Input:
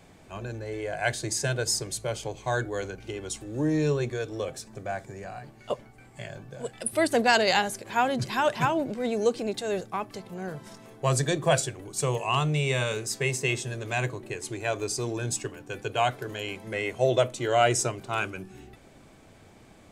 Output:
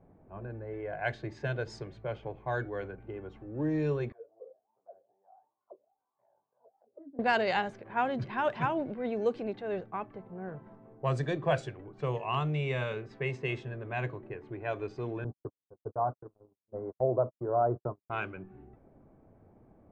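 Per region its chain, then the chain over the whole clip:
4.12–7.19 s: bass shelf 210 Hz -10.5 dB + chorus 2.8 Hz, delay 15 ms + auto-wah 270–1200 Hz, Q 12, down, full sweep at -27.5 dBFS
15.24–18.10 s: steep low-pass 1.2 kHz 48 dB/octave + gate -34 dBFS, range -59 dB
whole clip: level-controlled noise filter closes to 730 Hz, open at -20 dBFS; low-pass 2.4 kHz 12 dB/octave; trim -5 dB

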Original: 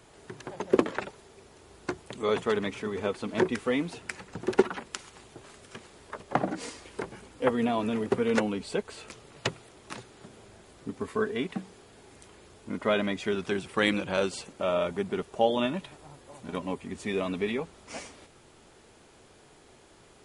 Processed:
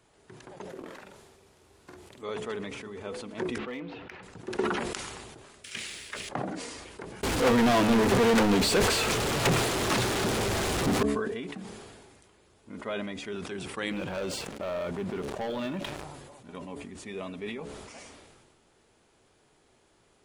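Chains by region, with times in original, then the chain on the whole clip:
0.69–2.22 s: CVSD coder 64 kbps + compression 2:1, threshold -42 dBFS + doubling 47 ms -3 dB
3.58–4.23 s: low-pass 3.4 kHz 24 dB/octave + bass shelf 250 Hz -5 dB + overload inside the chain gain 21.5 dB
5.64–6.29 s: resonant high shelf 1.5 kHz +14 dB, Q 1.5 + waveshaping leveller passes 1
7.23–11.03 s: jump at every zero crossing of -33 dBFS + treble shelf 9.5 kHz -6 dB + waveshaping leveller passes 5
13.91–16.04 s: treble shelf 5.6 kHz -8.5 dB + waveshaping leveller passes 3 + compression 2:1, threshold -26 dBFS
whole clip: de-hum 71.38 Hz, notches 10; decay stretcher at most 31 dB/s; trim -8.5 dB

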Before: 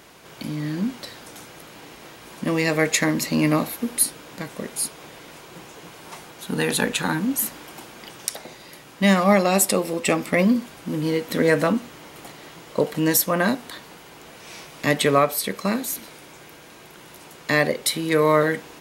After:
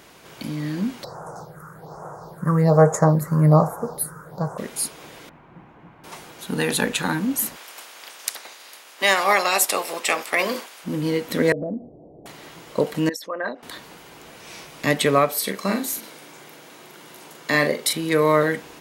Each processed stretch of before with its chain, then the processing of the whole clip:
1.04–4.58 s: FFT filter 100 Hz 0 dB, 160 Hz +12 dB, 250 Hz -12 dB, 430 Hz +6 dB, 790 Hz +12 dB, 1.4 kHz +9 dB, 2.6 kHz -29 dB, 4.6 kHz -5 dB + phase shifter stages 4, 1.2 Hz, lowest notch 660–4200 Hz
5.29–6.04 s: median filter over 5 samples + FFT filter 240 Hz 0 dB, 450 Hz -11 dB, 830 Hz -3 dB, 2.2 kHz -10 dB, 5.1 kHz -28 dB
7.55–10.83 s: spectral peaks clipped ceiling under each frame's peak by 13 dB + high-pass 500 Hz
11.52–12.26 s: Chebyshev low-pass 710 Hz, order 5 + compression 4:1, threshold -25 dBFS
13.09–13.63 s: resonances exaggerated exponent 2 + high-pass 1.2 kHz 6 dB/octave + distance through air 120 m
15.32–17.93 s: high-pass 170 Hz + band-stop 2.5 kHz, Q 26 + doubling 41 ms -6.5 dB
whole clip: none

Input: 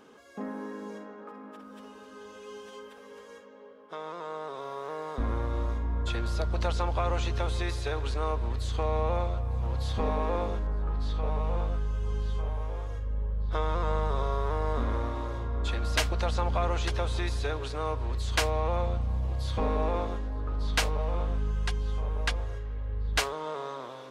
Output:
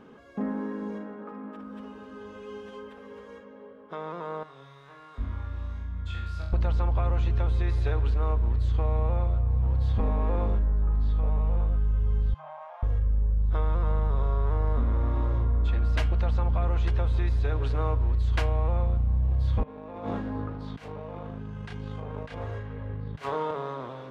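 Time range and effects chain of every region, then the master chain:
4.43–6.53 s: amplifier tone stack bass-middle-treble 5-5-5 + flutter echo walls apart 3.8 m, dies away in 0.52 s + tape noise reduction on one side only encoder only
12.34–12.83 s: steep high-pass 610 Hz 96 dB/octave + tilt EQ -3.5 dB/octave
19.63–23.51 s: doubling 30 ms -7.5 dB + compressor with a negative ratio -34 dBFS, ratio -0.5 + high-pass 170 Hz
whole clip: tone controls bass +10 dB, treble -14 dB; de-hum 149.2 Hz, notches 23; compression, threshold -23 dBFS; trim +2 dB

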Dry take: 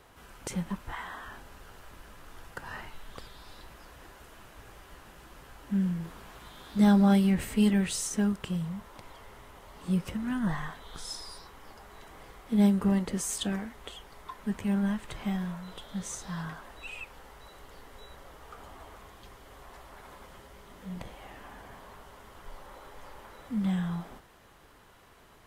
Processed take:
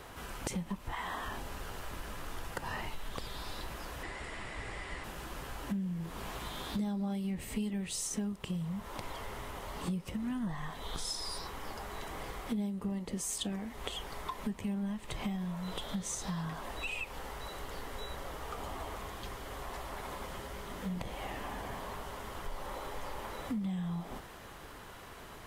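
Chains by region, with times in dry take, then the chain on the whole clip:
4.03–5.04 s: steep low-pass 9.3 kHz + peaking EQ 2 kHz +12.5 dB 0.27 oct + band-stop 6.2 kHz, Q 6.9
whole clip: dynamic bell 1.5 kHz, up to -8 dB, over -58 dBFS, Q 3.1; compression 8:1, threshold -42 dBFS; trim +8 dB

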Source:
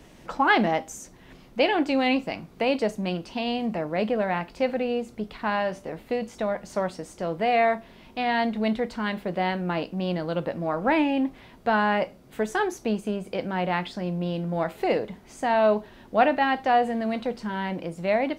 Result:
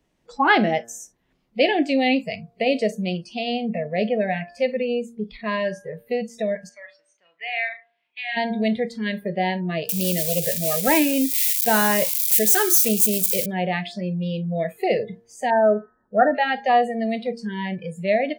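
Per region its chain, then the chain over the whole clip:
6.69–8.37 s: band-pass filter 2.3 kHz, Q 1.7 + flutter echo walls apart 5.9 m, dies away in 0.27 s
9.89–13.46 s: zero-crossing glitches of -20.5 dBFS + treble shelf 7.3 kHz +10.5 dB
15.50–16.35 s: brick-wall FIR low-pass 1.9 kHz + bass shelf 150 Hz -3.5 dB
whole clip: spectral noise reduction 23 dB; de-hum 116.3 Hz, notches 15; trim +3.5 dB

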